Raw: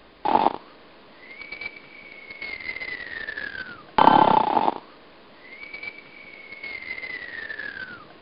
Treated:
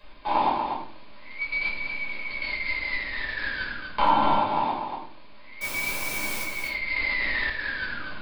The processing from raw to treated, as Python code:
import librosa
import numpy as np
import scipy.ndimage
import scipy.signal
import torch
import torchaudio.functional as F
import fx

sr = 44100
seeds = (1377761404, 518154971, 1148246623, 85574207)

p1 = fx.peak_eq(x, sr, hz=370.0, db=-14.0, octaves=2.8)
p2 = fx.rider(p1, sr, range_db=5, speed_s=0.5)
p3 = fx.quant_dither(p2, sr, seeds[0], bits=6, dither='triangular', at=(5.61, 6.43))
p4 = fx.small_body(p3, sr, hz=(290.0, 570.0, 1000.0, 2300.0), ring_ms=25, db=8)
p5 = p4 + fx.echo_single(p4, sr, ms=242, db=-6.5, dry=0)
p6 = fx.room_shoebox(p5, sr, seeds[1], volume_m3=410.0, walls='furnished', distance_m=5.3)
p7 = fx.env_flatten(p6, sr, amount_pct=100, at=(6.96, 7.5))
y = F.gain(torch.from_numpy(p7), -6.0).numpy()